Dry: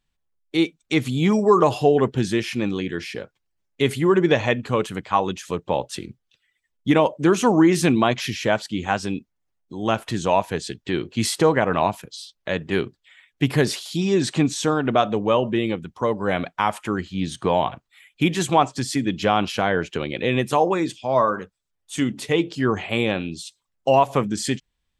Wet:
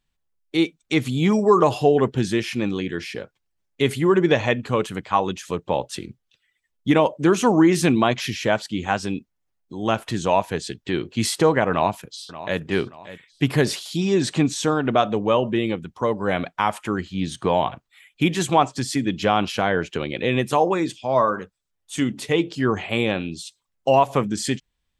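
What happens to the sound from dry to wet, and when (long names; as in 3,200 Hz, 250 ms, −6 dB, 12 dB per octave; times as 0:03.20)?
0:11.71–0:12.59: delay throw 580 ms, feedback 40%, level −15 dB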